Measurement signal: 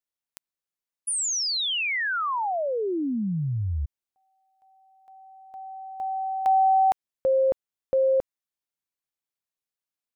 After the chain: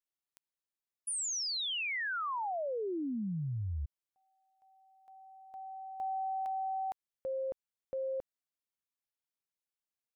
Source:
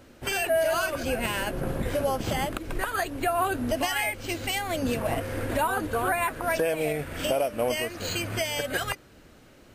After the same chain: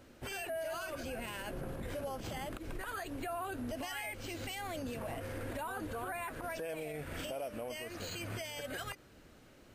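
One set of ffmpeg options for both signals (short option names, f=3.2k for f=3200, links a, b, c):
-af "alimiter=level_in=2.5dB:limit=-24dB:level=0:latency=1:release=78,volume=-2.5dB,volume=-6dB"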